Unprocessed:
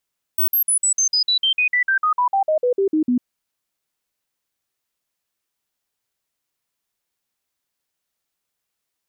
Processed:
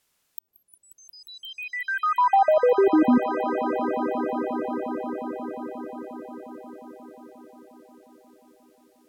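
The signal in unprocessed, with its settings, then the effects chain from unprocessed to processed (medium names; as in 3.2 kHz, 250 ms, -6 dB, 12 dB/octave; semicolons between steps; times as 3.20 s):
stepped sine 15.8 kHz down, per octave 3, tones 19, 0.10 s, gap 0.05 s -14.5 dBFS
low-pass that closes with the level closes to 570 Hz, closed at -21.5 dBFS; in parallel at +1 dB: compressor with a negative ratio -25 dBFS, ratio -0.5; on the sum: echo with a slow build-up 178 ms, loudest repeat 5, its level -14 dB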